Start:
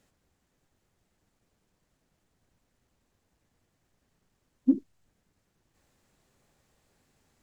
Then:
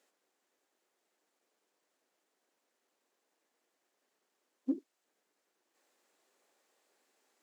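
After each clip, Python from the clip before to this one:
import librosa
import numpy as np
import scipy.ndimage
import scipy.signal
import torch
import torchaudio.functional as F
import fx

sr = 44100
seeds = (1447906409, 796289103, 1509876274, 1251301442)

y = scipy.signal.sosfilt(scipy.signal.butter(4, 330.0, 'highpass', fs=sr, output='sos'), x)
y = y * librosa.db_to_amplitude(-3.0)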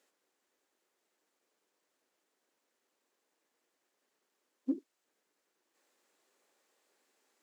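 y = fx.peak_eq(x, sr, hz=710.0, db=-3.0, octaves=0.41)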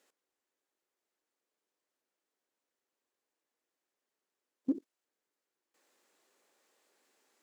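y = fx.level_steps(x, sr, step_db=16)
y = y * librosa.db_to_amplitude(5.5)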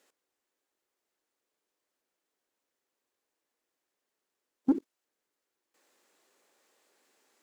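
y = fx.leveller(x, sr, passes=1)
y = y * librosa.db_to_amplitude(5.0)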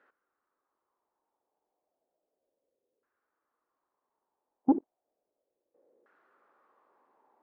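y = fx.filter_lfo_lowpass(x, sr, shape='saw_down', hz=0.33, low_hz=470.0, high_hz=1500.0, q=4.1)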